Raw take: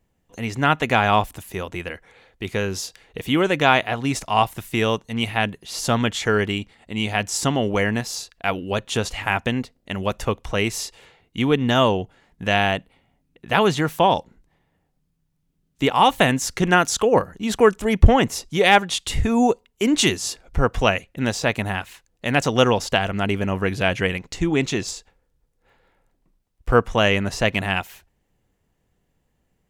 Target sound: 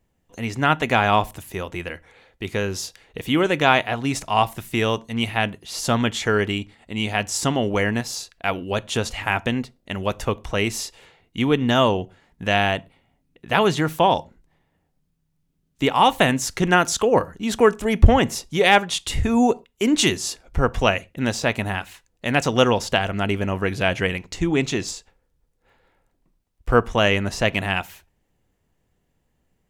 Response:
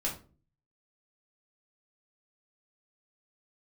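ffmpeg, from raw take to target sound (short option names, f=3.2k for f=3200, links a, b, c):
-filter_complex "[0:a]asplit=2[a][b];[1:a]atrim=start_sample=2205,atrim=end_sample=6174[c];[b][c]afir=irnorm=-1:irlink=0,volume=-21dB[d];[a][d]amix=inputs=2:normalize=0,volume=-1dB"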